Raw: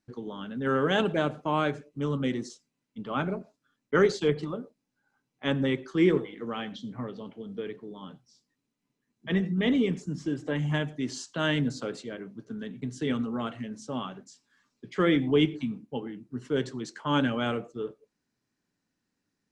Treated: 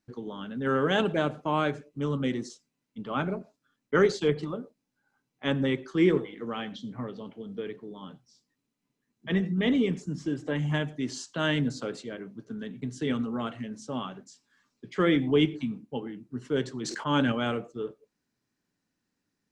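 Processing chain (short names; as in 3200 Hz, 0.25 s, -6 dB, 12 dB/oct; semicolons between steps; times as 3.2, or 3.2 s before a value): 16.81–17.32 sustainer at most 26 dB/s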